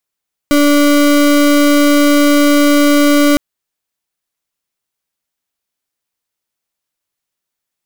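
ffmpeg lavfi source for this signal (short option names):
-f lavfi -i "aevalsrc='0.355*(2*lt(mod(290*t,1),0.33)-1)':d=2.86:s=44100"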